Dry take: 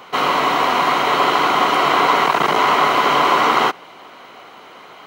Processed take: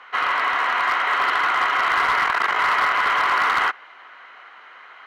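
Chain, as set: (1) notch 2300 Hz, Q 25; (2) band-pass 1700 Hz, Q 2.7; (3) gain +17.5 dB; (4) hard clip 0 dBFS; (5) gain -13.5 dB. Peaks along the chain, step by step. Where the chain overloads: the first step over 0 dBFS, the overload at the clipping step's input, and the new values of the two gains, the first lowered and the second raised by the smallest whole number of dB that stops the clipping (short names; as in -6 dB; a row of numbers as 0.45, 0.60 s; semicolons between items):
-2.0, -10.0, +7.5, 0.0, -13.5 dBFS; step 3, 7.5 dB; step 3 +9.5 dB, step 5 -5.5 dB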